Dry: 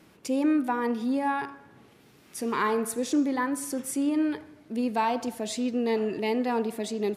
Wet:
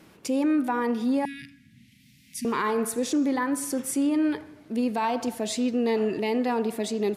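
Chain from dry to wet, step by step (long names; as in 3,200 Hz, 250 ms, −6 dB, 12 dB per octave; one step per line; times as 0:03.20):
0:01.25–0:02.45: Chebyshev band-stop filter 250–2,000 Hz, order 4
brickwall limiter −20.5 dBFS, peak gain reduction 6.5 dB
level +3 dB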